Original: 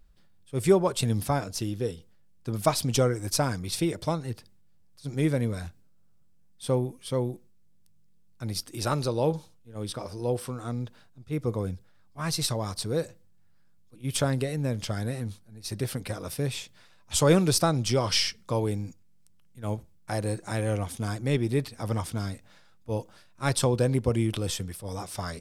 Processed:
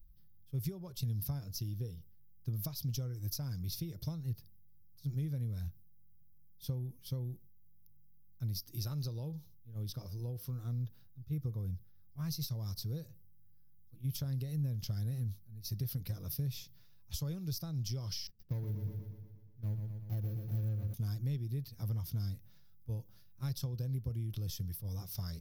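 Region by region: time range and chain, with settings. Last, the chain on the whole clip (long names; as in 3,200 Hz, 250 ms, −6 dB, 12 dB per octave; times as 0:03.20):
0:18.27–0:20.94: running median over 41 samples + noise gate −44 dBFS, range −10 dB + repeating echo 120 ms, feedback 59%, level −7 dB
whole clip: dynamic equaliser 5,000 Hz, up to +5 dB, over −48 dBFS, Q 1.8; downward compressor 12 to 1, threshold −29 dBFS; drawn EQ curve 150 Hz 0 dB, 230 Hz −12 dB, 750 Hz −20 dB, 2,300 Hz −18 dB, 5,900 Hz −8 dB, 8,500 Hz −23 dB, 14,000 Hz +12 dB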